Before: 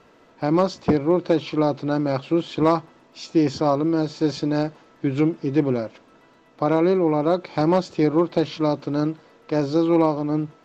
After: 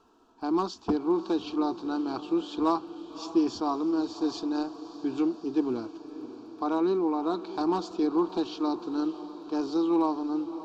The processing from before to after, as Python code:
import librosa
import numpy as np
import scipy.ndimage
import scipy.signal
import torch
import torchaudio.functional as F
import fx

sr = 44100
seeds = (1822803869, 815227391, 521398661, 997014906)

y = fx.dynamic_eq(x, sr, hz=2700.0, q=0.97, threshold_db=-42.0, ratio=4.0, max_db=5)
y = fx.fixed_phaser(y, sr, hz=550.0, stages=6)
y = fx.echo_diffused(y, sr, ms=590, feedback_pct=61, wet_db=-14.0)
y = F.gain(torch.from_numpy(y), -5.5).numpy()